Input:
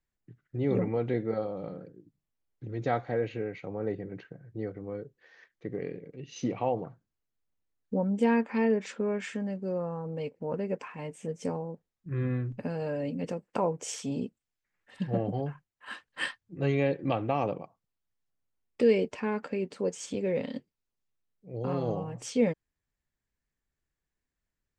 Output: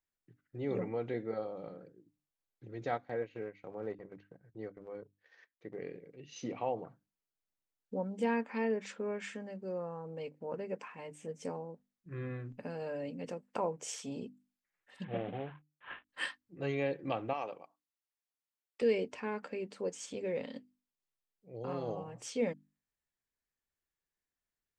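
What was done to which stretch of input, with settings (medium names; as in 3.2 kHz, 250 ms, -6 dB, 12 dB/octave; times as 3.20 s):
2.88–5.78 s: transient shaper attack -2 dB, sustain -12 dB
15.04–16.09 s: CVSD coder 16 kbps
17.33–18.82 s: high-pass 780 Hz 6 dB/octave
whole clip: bass shelf 230 Hz -8.5 dB; hum notches 50/100/150/200/250/300 Hz; trim -4.5 dB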